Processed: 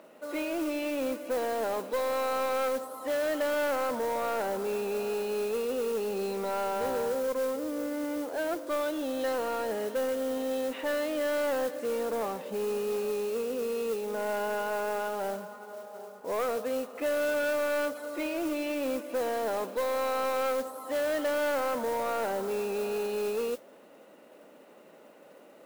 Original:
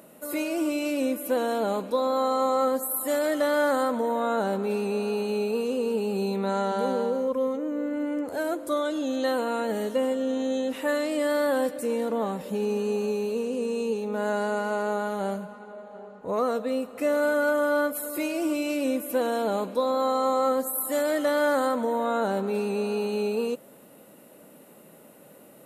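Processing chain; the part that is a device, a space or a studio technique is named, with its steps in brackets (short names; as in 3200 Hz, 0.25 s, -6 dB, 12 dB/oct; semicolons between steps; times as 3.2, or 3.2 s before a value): carbon microphone (BPF 330–3400 Hz; soft clip -25 dBFS, distortion -11 dB; modulation noise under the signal 17 dB)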